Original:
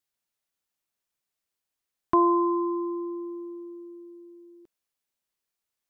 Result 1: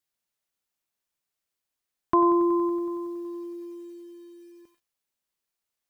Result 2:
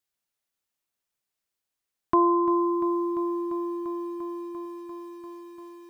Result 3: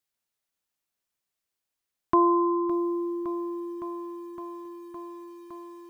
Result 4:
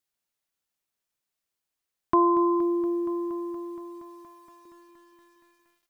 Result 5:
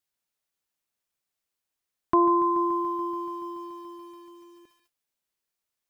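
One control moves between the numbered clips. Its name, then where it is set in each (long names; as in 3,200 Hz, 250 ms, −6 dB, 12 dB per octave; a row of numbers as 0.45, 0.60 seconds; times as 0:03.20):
feedback echo at a low word length, delay time: 93, 345, 562, 235, 143 milliseconds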